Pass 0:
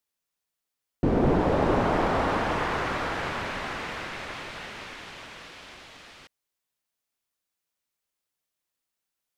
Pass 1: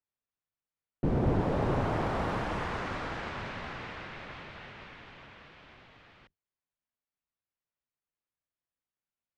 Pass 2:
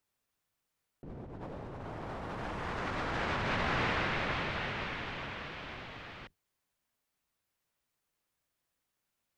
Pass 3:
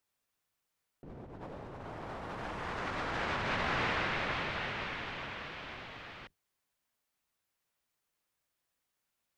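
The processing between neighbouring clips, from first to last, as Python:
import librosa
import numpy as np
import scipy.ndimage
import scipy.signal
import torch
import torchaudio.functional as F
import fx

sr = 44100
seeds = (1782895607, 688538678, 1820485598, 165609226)

y1 = fx.octave_divider(x, sr, octaves=1, level_db=2.0)
y1 = fx.env_lowpass(y1, sr, base_hz=2400.0, full_db=-20.0)
y1 = F.gain(torch.from_numpy(y1), -7.5).numpy()
y2 = fx.over_compress(y1, sr, threshold_db=-41.0, ratio=-1.0)
y2 = F.gain(torch.from_numpy(y2), 3.5).numpy()
y3 = fx.low_shelf(y2, sr, hz=360.0, db=-4.0)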